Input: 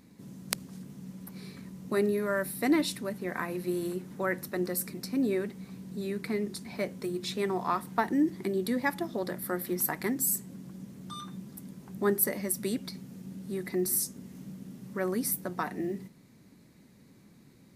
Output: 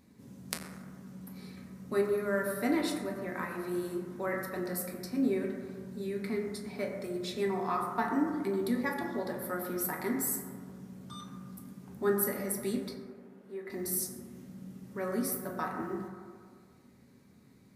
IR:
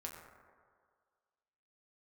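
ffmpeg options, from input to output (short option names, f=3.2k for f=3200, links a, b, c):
-filter_complex "[0:a]asettb=1/sr,asplit=3[a][b][c];[a]atrim=end=12.944[d];[b]atrim=start=12.94:end=13.7,asetpts=PTS-STARTPTS,afade=t=in:d=0.004:c=qsin,afade=t=out:st=0.756:d=0.004:c=qsin,acrossover=split=310 2600:gain=0.0794 1 0.158[e][f][g];[e][f][g]amix=inputs=3:normalize=0[h];[c]atrim=start=13.696[i];[d][h]acrossfade=d=0.004:c1=hsin:c2=qsin[j];[j][i]acrossfade=d=0.004:c1=qsin:c2=hsin[k];[1:a]atrim=start_sample=2205[l];[k][l]afir=irnorm=-1:irlink=0"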